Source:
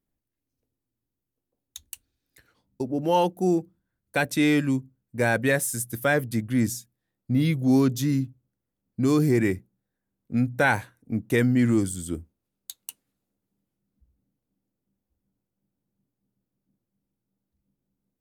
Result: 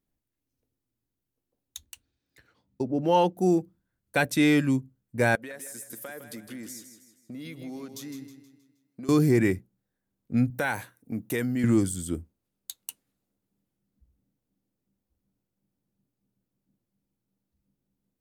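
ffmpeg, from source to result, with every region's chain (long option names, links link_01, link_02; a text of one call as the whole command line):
ffmpeg -i in.wav -filter_complex "[0:a]asettb=1/sr,asplit=3[link_01][link_02][link_03];[link_01]atrim=end=1.854[link_04];[link_02]atrim=start=1.85:end=3.38,asetpts=PTS-STARTPTS,afade=type=in:duration=0.004:curve=qsin,afade=type=out:start_time=1.526:duration=0.004:curve=qsin,highpass=46,equalizer=frequency=12000:width_type=o:width=1.1:gain=-10.5[link_05];[link_03]atrim=start=3.376[link_06];[link_04][link_05]acrossfade=duration=0.004:curve1=hsin:curve2=qsin[link_07];[link_07][link_06]acrossfade=duration=0.004:curve1=qsin:curve2=hsin,asettb=1/sr,asplit=3[link_08][link_09][link_10];[link_08]atrim=end=5.354[link_11];[link_09]atrim=start=5.35:end=9.09,asetpts=PTS-STARTPTS,afade=type=in:duration=0.004:curve=qsin,afade=type=out:start_time=3.736:duration=0.004:curve=qsin,highpass=300,acompressor=threshold=-37dB:ratio=8:attack=3.2:release=140:knee=1:detection=peak,aecho=1:1:158|316|474|632|790:0.335|0.144|0.0619|0.0266|0.0115,atrim=end_sample=164934[link_12];[link_10]atrim=start=9.086[link_13];[link_11][link_12]acrossfade=duration=0.004:curve1=hsin:curve2=qsin[link_14];[link_14][link_13]acrossfade=duration=0.004:curve1=qsin:curve2=hsin,asettb=1/sr,asplit=3[link_15][link_16][link_17];[link_15]atrim=end=10.504[link_18];[link_16]atrim=start=10.5:end=11.64,asetpts=PTS-STARTPTS,afade=type=in:duration=0.004:curve=qsin,afade=type=out:start_time=1.136:duration=0.004:curve=qsin,highpass=frequency=160:poles=1,highshelf=frequency=11000:gain=11.5,acompressor=threshold=-28dB:ratio=2:attack=3.2:release=140:knee=1:detection=peak[link_19];[link_17]atrim=start=11.636[link_20];[link_18][link_19]acrossfade=duration=0.004:curve1=hsin:curve2=qsin[link_21];[link_21][link_20]acrossfade=duration=0.004:curve1=qsin:curve2=hsin" out.wav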